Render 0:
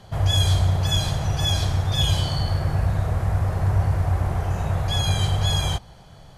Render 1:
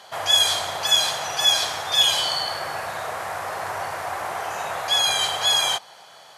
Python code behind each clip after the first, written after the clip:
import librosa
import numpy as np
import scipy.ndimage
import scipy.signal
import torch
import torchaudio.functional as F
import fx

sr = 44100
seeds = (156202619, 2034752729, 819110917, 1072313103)

y = scipy.signal.sosfilt(scipy.signal.butter(2, 780.0, 'highpass', fs=sr, output='sos'), x)
y = y * librosa.db_to_amplitude(8.0)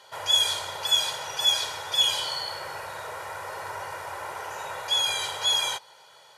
y = x + 0.64 * np.pad(x, (int(2.1 * sr / 1000.0), 0))[:len(x)]
y = y * librosa.db_to_amplitude(-7.5)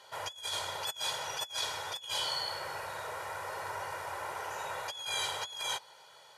y = fx.over_compress(x, sr, threshold_db=-29.0, ratio=-0.5)
y = y * librosa.db_to_amplitude(-6.5)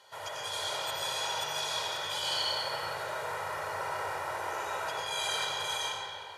y = fx.rev_freeverb(x, sr, rt60_s=2.6, hf_ratio=0.65, predelay_ms=55, drr_db=-6.0)
y = y * librosa.db_to_amplitude(-3.0)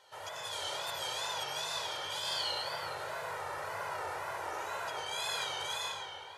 y = fx.wow_flutter(x, sr, seeds[0], rate_hz=2.1, depth_cents=99.0)
y = y * librosa.db_to_amplitude(-3.5)